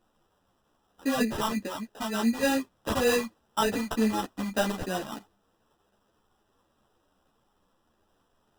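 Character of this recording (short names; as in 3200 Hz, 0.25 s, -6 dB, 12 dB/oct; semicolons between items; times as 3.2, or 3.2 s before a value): a quantiser's noise floor 12-bit, dither triangular; phasing stages 12, 3.3 Hz, lowest notch 420–2000 Hz; aliases and images of a low sample rate 2200 Hz, jitter 0%; a shimmering, thickened sound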